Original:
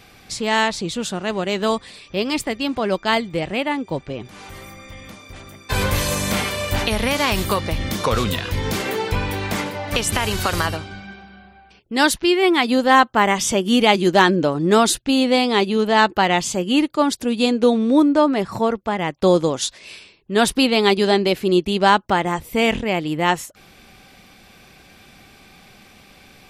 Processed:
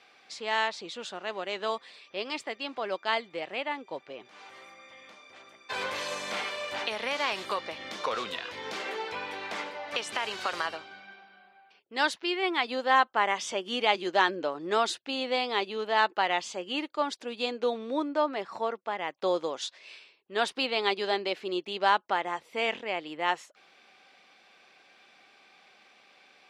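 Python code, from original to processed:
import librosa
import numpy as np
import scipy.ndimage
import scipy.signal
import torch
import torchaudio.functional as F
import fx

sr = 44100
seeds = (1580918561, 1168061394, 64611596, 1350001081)

y = fx.bandpass_edges(x, sr, low_hz=500.0, high_hz=4700.0)
y = F.gain(torch.from_numpy(y), -8.5).numpy()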